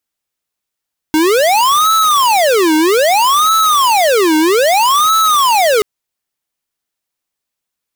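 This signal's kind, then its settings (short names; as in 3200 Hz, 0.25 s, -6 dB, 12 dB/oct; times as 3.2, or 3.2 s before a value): siren wail 309–1310 Hz 0.62/s square -10.5 dBFS 4.68 s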